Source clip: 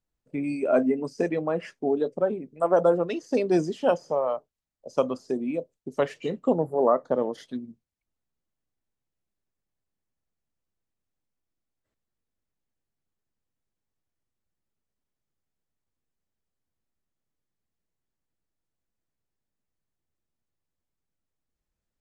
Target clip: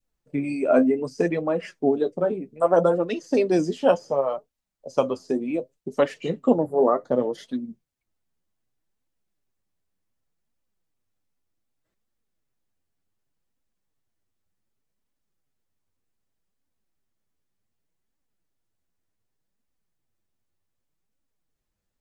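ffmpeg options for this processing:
ffmpeg -i in.wav -af "flanger=delay=3.2:depth=8.9:regen=36:speed=0.66:shape=triangular,adynamicequalizer=threshold=0.00794:dfrequency=1000:dqfactor=0.97:tfrequency=1000:tqfactor=0.97:attack=5:release=100:ratio=0.375:range=3:mode=cutabove:tftype=bell,volume=7.5dB" out.wav

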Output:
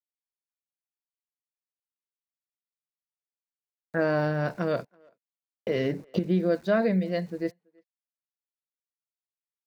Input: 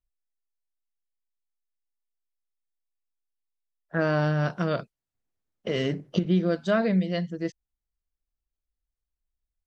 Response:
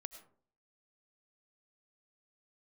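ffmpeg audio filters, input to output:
-filter_complex "[0:a]lowpass=frequency=5000:width=0.5412,lowpass=frequency=5000:width=1.3066,agate=range=-14dB:threshold=-44dB:ratio=16:detection=peak,highpass=44,aeval=exprs='val(0)*gte(abs(val(0)),0.00335)':channel_layout=same,equalizer=frequency=160:width_type=o:width=0.33:gain=-6,equalizer=frequency=500:width_type=o:width=0.33:gain=3,equalizer=frequency=1250:width_type=o:width=0.33:gain=-5,equalizer=frequency=3150:width_type=o:width=0.33:gain=-10,asplit=2[link_01][link_02];[link_02]adelay=330,highpass=300,lowpass=3400,asoftclip=type=hard:threshold=-22dB,volume=-29dB[link_03];[link_01][link_03]amix=inputs=2:normalize=0"

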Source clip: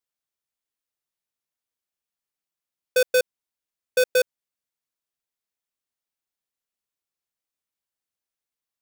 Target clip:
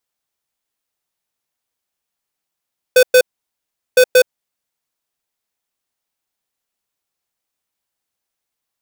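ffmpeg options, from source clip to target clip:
ffmpeg -i in.wav -af "equalizer=frequency=790:width_type=o:width=0.58:gain=3,volume=8.5dB" out.wav

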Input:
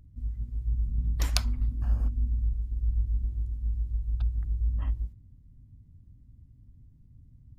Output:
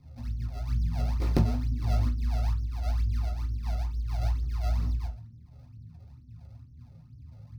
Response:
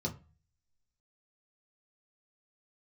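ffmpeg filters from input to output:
-filter_complex "[0:a]flanger=delay=15:depth=2.7:speed=1.8,acrusher=samples=37:mix=1:aa=0.000001:lfo=1:lforange=59.2:lforate=2.2[link_01];[1:a]atrim=start_sample=2205,atrim=end_sample=3969[link_02];[link_01][link_02]afir=irnorm=-1:irlink=0,volume=-2.5dB"

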